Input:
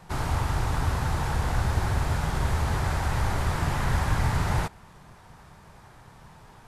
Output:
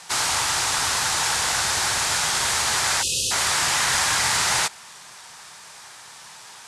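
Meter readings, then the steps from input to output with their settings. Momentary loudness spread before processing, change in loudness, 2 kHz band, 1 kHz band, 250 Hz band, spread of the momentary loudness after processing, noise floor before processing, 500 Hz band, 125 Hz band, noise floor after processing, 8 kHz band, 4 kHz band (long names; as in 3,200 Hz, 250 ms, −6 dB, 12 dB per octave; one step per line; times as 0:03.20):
2 LU, +7.5 dB, +10.5 dB, +5.0 dB, −7.5 dB, 2 LU, −52 dBFS, 0.0 dB, −14.0 dB, −44 dBFS, +21.5 dB, +18.5 dB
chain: meter weighting curve ITU-R 468
time-frequency box erased 0:03.02–0:03.31, 560–2,500 Hz
high-shelf EQ 5,000 Hz +6.5 dB
level +5.5 dB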